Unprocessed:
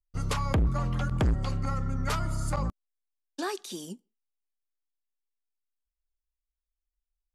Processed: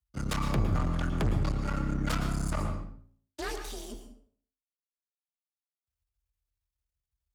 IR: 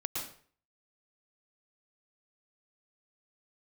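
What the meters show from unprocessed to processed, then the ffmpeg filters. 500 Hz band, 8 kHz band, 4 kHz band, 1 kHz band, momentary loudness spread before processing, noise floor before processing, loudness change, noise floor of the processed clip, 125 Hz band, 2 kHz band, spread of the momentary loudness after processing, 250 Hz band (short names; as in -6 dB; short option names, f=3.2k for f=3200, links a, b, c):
-2.0 dB, -1.5 dB, -1.0 dB, -2.5 dB, 13 LU, under -85 dBFS, -1.5 dB, under -85 dBFS, -2.0 dB, +0.5 dB, 14 LU, +1.0 dB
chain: -filter_complex "[0:a]bandreject=f=57.43:t=h:w=4,bandreject=f=114.86:t=h:w=4,bandreject=f=172.29:t=h:w=4,bandreject=f=229.72:t=h:w=4,bandreject=f=287.15:t=h:w=4,bandreject=f=344.58:t=h:w=4,bandreject=f=402.01:t=h:w=4,bandreject=f=459.44:t=h:w=4,bandreject=f=516.87:t=h:w=4,bandreject=f=574.3:t=h:w=4,bandreject=f=631.73:t=h:w=4,bandreject=f=689.16:t=h:w=4,bandreject=f=746.59:t=h:w=4,bandreject=f=804.02:t=h:w=4,aeval=exprs='max(val(0),0)':c=same,afreqshift=38,asplit=2[a][b];[1:a]atrim=start_sample=2205[c];[b][c]afir=irnorm=-1:irlink=0,volume=-4dB[d];[a][d]amix=inputs=2:normalize=0,volume=-2.5dB"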